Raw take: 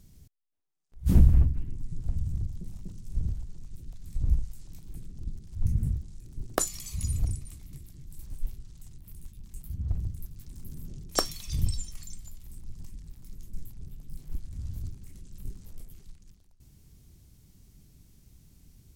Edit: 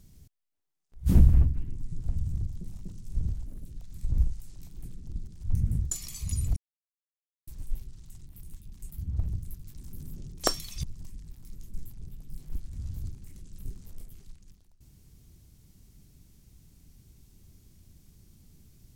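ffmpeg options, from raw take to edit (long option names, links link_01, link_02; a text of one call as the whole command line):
ffmpeg -i in.wav -filter_complex "[0:a]asplit=7[link_01][link_02][link_03][link_04][link_05][link_06][link_07];[link_01]atrim=end=3.464[link_08];[link_02]atrim=start=3.46:end=3.77,asetpts=PTS-STARTPTS,asetrate=70560,aresample=44100,atrim=end_sample=8544,asetpts=PTS-STARTPTS[link_09];[link_03]atrim=start=3.766:end=6.032[link_10];[link_04]atrim=start=6.628:end=7.28,asetpts=PTS-STARTPTS,afade=type=out:start_time=0.648:duration=0.004:curve=hsin[link_11];[link_05]atrim=start=7.28:end=8.19,asetpts=PTS-STARTPTS,volume=0[link_12];[link_06]atrim=start=8.19:end=11.552,asetpts=PTS-STARTPTS,afade=type=in:duration=0.004:curve=hsin[link_13];[link_07]atrim=start=12.628[link_14];[link_08][link_09]acrossfade=duration=0.004:curve1=hsin:curve2=hsin[link_15];[link_15][link_10]acrossfade=duration=0.004:curve1=hsin:curve2=hsin[link_16];[link_11][link_12][link_13]concat=n=3:v=0:a=1[link_17];[link_16][link_17]acrossfade=duration=0.004:curve1=hsin:curve2=hsin[link_18];[link_18][link_14]acrossfade=duration=0.004:curve1=hsin:curve2=hsin" out.wav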